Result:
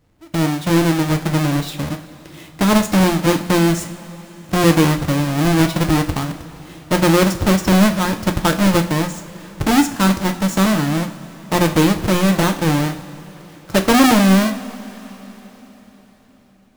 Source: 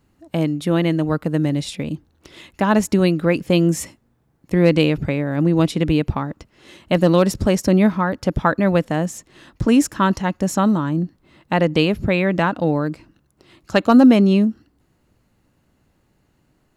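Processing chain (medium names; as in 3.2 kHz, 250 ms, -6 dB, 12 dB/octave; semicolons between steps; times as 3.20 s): square wave that keeps the level; two-slope reverb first 0.44 s, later 4.5 s, from -18 dB, DRR 5.5 dB; trim -4 dB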